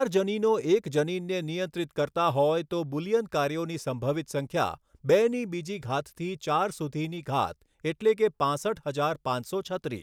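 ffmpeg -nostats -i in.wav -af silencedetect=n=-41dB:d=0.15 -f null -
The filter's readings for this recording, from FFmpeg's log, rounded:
silence_start: 4.75
silence_end: 5.04 | silence_duration: 0.30
silence_start: 7.52
silence_end: 7.84 | silence_duration: 0.32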